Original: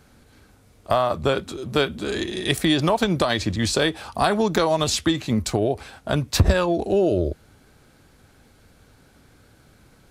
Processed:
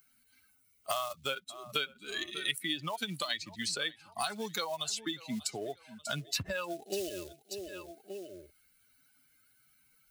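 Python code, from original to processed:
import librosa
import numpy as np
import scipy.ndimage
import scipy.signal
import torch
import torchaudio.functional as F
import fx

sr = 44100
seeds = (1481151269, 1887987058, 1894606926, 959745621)

p1 = fx.bin_expand(x, sr, power=2.0)
p2 = fx.highpass(p1, sr, hz=46.0, slope=6)
p3 = fx.low_shelf(p2, sr, hz=200.0, db=-12.0)
p4 = fx.quant_float(p3, sr, bits=2)
p5 = p3 + (p4 * librosa.db_to_amplitude(-11.0))
p6 = fx.tone_stack(p5, sr, knobs='5-5-5')
p7 = fx.rider(p6, sr, range_db=4, speed_s=0.5)
p8 = fx.hpss(p7, sr, part='harmonic', gain_db=4)
p9 = p8 + fx.echo_feedback(p8, sr, ms=589, feedback_pct=29, wet_db=-23, dry=0)
p10 = fx.band_squash(p9, sr, depth_pct=100)
y = p10 * librosa.db_to_amplitude(1.0)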